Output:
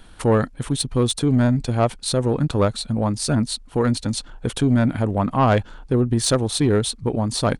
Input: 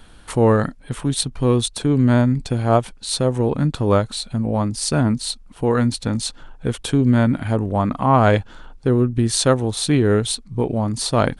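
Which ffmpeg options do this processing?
ffmpeg -i in.wav -af "acontrast=65,atempo=1.5,volume=-6.5dB" out.wav

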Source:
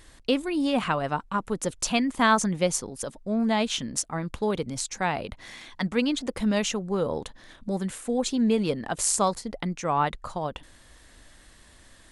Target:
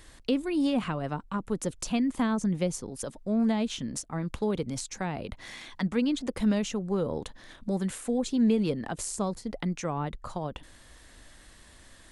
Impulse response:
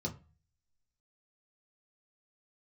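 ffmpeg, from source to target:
-filter_complex "[0:a]acrossover=split=420[link_01][link_02];[link_02]acompressor=threshold=-35dB:ratio=4[link_03];[link_01][link_03]amix=inputs=2:normalize=0"

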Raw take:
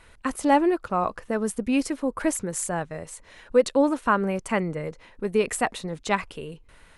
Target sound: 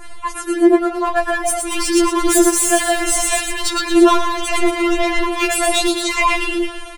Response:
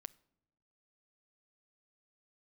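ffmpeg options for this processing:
-filter_complex "[0:a]areverse,acompressor=threshold=-32dB:ratio=8,areverse[link_01];[1:a]atrim=start_sample=2205,asetrate=28665,aresample=44100[link_02];[link_01][link_02]afir=irnorm=-1:irlink=0,dynaudnorm=framelen=440:gausssize=7:maxgain=14dB,asoftclip=type=hard:threshold=-27.5dB,adynamicequalizer=threshold=0.00562:dfrequency=3100:dqfactor=1.6:tfrequency=3100:tqfactor=1.6:attack=5:release=100:ratio=0.375:range=2:mode=boostabove:tftype=bell,asplit=2[link_03][link_04];[link_04]asplit=6[link_05][link_06][link_07][link_08][link_09][link_10];[link_05]adelay=114,afreqshift=39,volume=-4dB[link_11];[link_06]adelay=228,afreqshift=78,volume=-10.2dB[link_12];[link_07]adelay=342,afreqshift=117,volume=-16.4dB[link_13];[link_08]adelay=456,afreqshift=156,volume=-22.6dB[link_14];[link_09]adelay=570,afreqshift=195,volume=-28.8dB[link_15];[link_10]adelay=684,afreqshift=234,volume=-35dB[link_16];[link_11][link_12][link_13][link_14][link_15][link_16]amix=inputs=6:normalize=0[link_17];[link_03][link_17]amix=inputs=2:normalize=0,alimiter=level_in=27dB:limit=-1dB:release=50:level=0:latency=1,afftfilt=real='re*4*eq(mod(b,16),0)':imag='im*4*eq(mod(b,16),0)':win_size=2048:overlap=0.75,volume=-4.5dB"

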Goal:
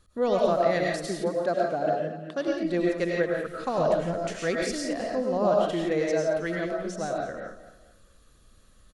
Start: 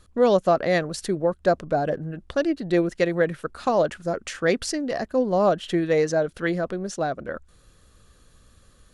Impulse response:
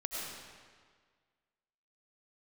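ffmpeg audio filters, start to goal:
-filter_complex "[0:a]asettb=1/sr,asplit=3[link_01][link_02][link_03];[link_01]atrim=end=1.054[link_04];[link_02]atrim=start=1.05:end=2.48,asetpts=PTS-STARTPTS,afade=type=in:duration=0.004:curve=qsin,afade=type=out:start_time=1.426:duration=0.004:curve=qsin,highpass=frequency=150:width=0.5412,highpass=frequency=150:width=1.3066[link_05];[link_03]atrim=start=2.476[link_06];[link_04][link_05]acrossfade=duration=0.004:curve1=hsin:curve2=qsin[link_07];[link_07][link_06]acrossfade=duration=0.004:curve1=qsin:curve2=hsin,asettb=1/sr,asplit=3[link_08][link_09][link_10];[link_08]atrim=end=3.784[link_11];[link_09]atrim=start=3.78:end=4.19,asetpts=PTS-STARTPTS,afade=type=in:duration=0.004:curve=qsin,afade=type=out:start_time=0.406:duration=0.004:curve=qsin,bass=frequency=250:gain=10,treble=frequency=4000:gain=-1[link_12];[link_10]atrim=start=4.186[link_13];[link_11][link_12]acrossfade=duration=0.004:curve1=hsin:curve2=qsin[link_14];[link_14][link_13]acrossfade=duration=0.004:curve1=qsin:curve2=hsin,aecho=1:1:222|444|666:0.2|0.0698|0.0244[link_15];[1:a]atrim=start_sample=2205,afade=type=out:start_time=0.23:duration=0.01,atrim=end_sample=10584[link_16];[link_15][link_16]afir=irnorm=-1:irlink=0,volume=-4.5dB"

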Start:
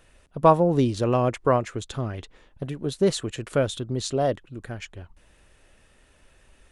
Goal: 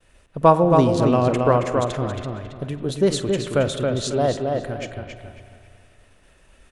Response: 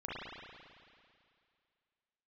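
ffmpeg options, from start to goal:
-filter_complex "[0:a]agate=range=-33dB:threshold=-54dB:ratio=3:detection=peak,asplit=2[link_01][link_02];[link_02]adelay=273,lowpass=frequency=3900:poles=1,volume=-4dB,asplit=2[link_03][link_04];[link_04]adelay=273,lowpass=frequency=3900:poles=1,volume=0.32,asplit=2[link_05][link_06];[link_06]adelay=273,lowpass=frequency=3900:poles=1,volume=0.32,asplit=2[link_07][link_08];[link_08]adelay=273,lowpass=frequency=3900:poles=1,volume=0.32[link_09];[link_01][link_03][link_05][link_07][link_09]amix=inputs=5:normalize=0,asplit=2[link_10][link_11];[1:a]atrim=start_sample=2205,adelay=49[link_12];[link_11][link_12]afir=irnorm=-1:irlink=0,volume=-13.5dB[link_13];[link_10][link_13]amix=inputs=2:normalize=0,volume=2.5dB"

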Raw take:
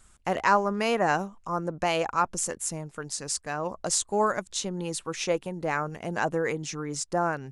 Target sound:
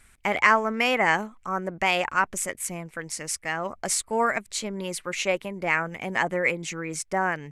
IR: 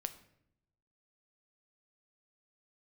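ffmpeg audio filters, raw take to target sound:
-af "equalizer=frequency=2000:width=2.4:gain=12.5,asetrate=48091,aresample=44100,atempo=0.917004"

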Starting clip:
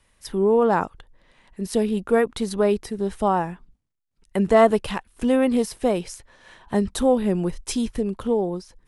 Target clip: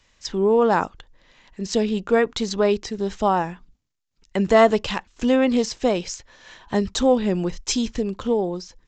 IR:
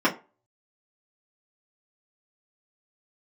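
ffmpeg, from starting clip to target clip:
-filter_complex "[0:a]asplit=2[link_01][link_02];[1:a]atrim=start_sample=2205,atrim=end_sample=3528[link_03];[link_02][link_03]afir=irnorm=-1:irlink=0,volume=-37dB[link_04];[link_01][link_04]amix=inputs=2:normalize=0,aresample=16000,aresample=44100,highshelf=frequency=2800:gain=10"

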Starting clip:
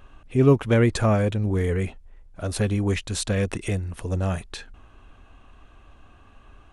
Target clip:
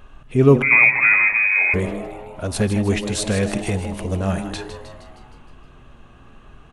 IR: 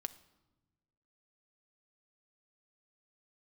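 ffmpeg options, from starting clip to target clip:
-filter_complex "[0:a]asplit=2[link_01][link_02];[link_02]asplit=7[link_03][link_04][link_05][link_06][link_07][link_08][link_09];[link_03]adelay=156,afreqshift=110,volume=-10dB[link_10];[link_04]adelay=312,afreqshift=220,volume=-14.7dB[link_11];[link_05]adelay=468,afreqshift=330,volume=-19.5dB[link_12];[link_06]adelay=624,afreqshift=440,volume=-24.2dB[link_13];[link_07]adelay=780,afreqshift=550,volume=-28.9dB[link_14];[link_08]adelay=936,afreqshift=660,volume=-33.7dB[link_15];[link_09]adelay=1092,afreqshift=770,volume=-38.4dB[link_16];[link_10][link_11][link_12][link_13][link_14][link_15][link_16]amix=inputs=7:normalize=0[link_17];[link_01][link_17]amix=inputs=2:normalize=0,asettb=1/sr,asplit=3[link_18][link_19][link_20];[link_18]atrim=end=0.624[link_21];[link_19]atrim=start=0.62:end=1.74,asetpts=PTS-STARTPTS,afade=type=in:duration=0.004:curve=qsin,afade=type=out:start_time=1.116:duration=0.004:curve=qsin,lowpass=frequency=2200:width_type=q:width=0.5098,lowpass=frequency=2200:width_type=q:width=0.6013,lowpass=frequency=2200:width_type=q:width=0.9,lowpass=frequency=2200:width_type=q:width=2.563,afreqshift=-2600[link_22];[link_20]atrim=start=1.736[link_23];[link_21][link_22]acrossfade=duration=0.004:curve1=hsin:curve2=qsin[link_24];[link_24][link_23]acrossfade=duration=0.004:curve1=qsin:curve2=hsin,asplit=2[link_25][link_26];[1:a]atrim=start_sample=2205[link_27];[link_26][link_27]afir=irnorm=-1:irlink=0,volume=10dB[link_28];[link_25][link_28]amix=inputs=2:normalize=0,volume=-7dB"

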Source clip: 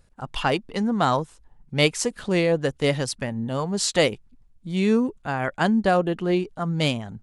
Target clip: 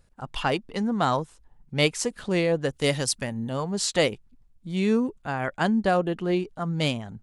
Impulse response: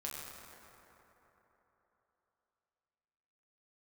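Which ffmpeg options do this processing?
-filter_complex "[0:a]asettb=1/sr,asplit=3[link_01][link_02][link_03];[link_01]atrim=end=2.734[link_04];[link_02]atrim=start=2.73:end=3.5,asetpts=PTS-STARTPTS,afade=type=in:duration=0.004:curve=qsin,afade=type=out:start_time=0.766:duration=0.004:curve=qsin,highshelf=frequency=4300:gain=10[link_05];[link_03]atrim=start=3.496[link_06];[link_04][link_05]acrossfade=duration=0.004:curve1=hsin:curve2=qsin[link_07];[link_07][link_06]acrossfade=duration=0.004:curve1=qsin:curve2=hsin,volume=-2.5dB"

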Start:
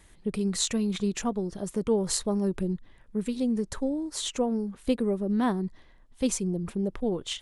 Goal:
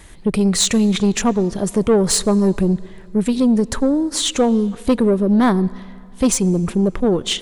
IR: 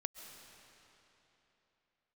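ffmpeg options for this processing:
-filter_complex "[0:a]acontrast=81,asoftclip=type=tanh:threshold=-14.5dB,asplit=2[link_01][link_02];[1:a]atrim=start_sample=2205,asetrate=70560,aresample=44100,highshelf=frequency=6900:gain=-8[link_03];[link_02][link_03]afir=irnorm=-1:irlink=0,volume=-6.5dB[link_04];[link_01][link_04]amix=inputs=2:normalize=0,volume=5dB"

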